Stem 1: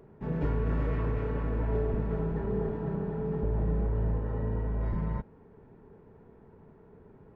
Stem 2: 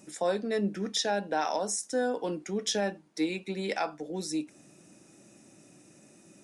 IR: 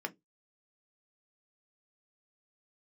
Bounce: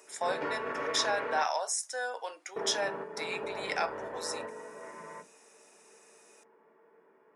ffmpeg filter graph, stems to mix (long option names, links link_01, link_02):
-filter_complex "[0:a]highpass=430,tiltshelf=frequency=670:gain=-4.5,volume=0.5dB,asplit=3[link_01][link_02][link_03];[link_01]atrim=end=1.43,asetpts=PTS-STARTPTS,afade=type=out:start_time=1.426:duration=0.004:curve=hsin[link_04];[link_02]atrim=start=1.43:end=2.56,asetpts=PTS-STARTPTS,volume=0[link_05];[link_03]atrim=start=2.56,asetpts=PTS-STARTPTS,afade=type=in:duration=0.004:curve=hsin[link_06];[link_04][link_05][link_06]concat=n=3:v=0:a=1,asplit=2[link_07][link_08];[link_08]volume=-5dB[link_09];[1:a]highpass=frequency=660:width=0.5412,highpass=frequency=660:width=1.3066,volume=-1.5dB,asplit=3[link_10][link_11][link_12];[link_11]volume=-7dB[link_13];[link_12]apad=whole_len=324179[link_14];[link_07][link_14]sidechaingate=range=-33dB:threshold=-53dB:ratio=16:detection=peak[link_15];[2:a]atrim=start_sample=2205[link_16];[link_09][link_13]amix=inputs=2:normalize=0[link_17];[link_17][link_16]afir=irnorm=-1:irlink=0[link_18];[link_15][link_10][link_18]amix=inputs=3:normalize=0"